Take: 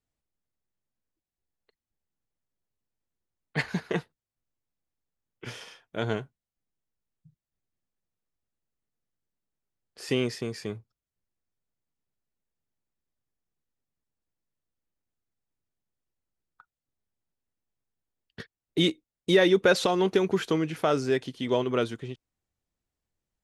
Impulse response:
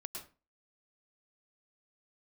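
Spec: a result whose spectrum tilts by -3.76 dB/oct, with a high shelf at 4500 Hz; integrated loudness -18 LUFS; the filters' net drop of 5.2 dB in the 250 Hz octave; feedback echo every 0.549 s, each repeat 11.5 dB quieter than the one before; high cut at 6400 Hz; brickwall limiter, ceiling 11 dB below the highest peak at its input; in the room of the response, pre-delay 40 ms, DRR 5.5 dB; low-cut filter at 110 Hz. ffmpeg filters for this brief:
-filter_complex "[0:a]highpass=110,lowpass=6.4k,equalizer=f=250:t=o:g=-8.5,highshelf=f=4.5k:g=-4,alimiter=limit=-21dB:level=0:latency=1,aecho=1:1:549|1098|1647:0.266|0.0718|0.0194,asplit=2[a][b];[1:a]atrim=start_sample=2205,adelay=40[c];[b][c]afir=irnorm=-1:irlink=0,volume=-3dB[d];[a][d]amix=inputs=2:normalize=0,volume=15.5dB"

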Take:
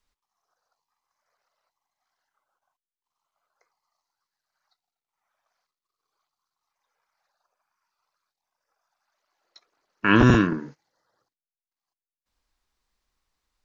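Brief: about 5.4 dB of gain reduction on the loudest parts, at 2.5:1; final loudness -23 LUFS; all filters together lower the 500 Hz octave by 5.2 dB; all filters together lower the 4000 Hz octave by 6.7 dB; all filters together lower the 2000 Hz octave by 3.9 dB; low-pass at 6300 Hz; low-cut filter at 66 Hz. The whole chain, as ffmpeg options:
-af "highpass=66,lowpass=6.3k,equalizer=f=500:t=o:g=-8,equalizer=f=2k:t=o:g=-3,equalizer=f=4k:t=o:g=-8.5,acompressor=threshold=-21dB:ratio=2.5,volume=3.5dB"

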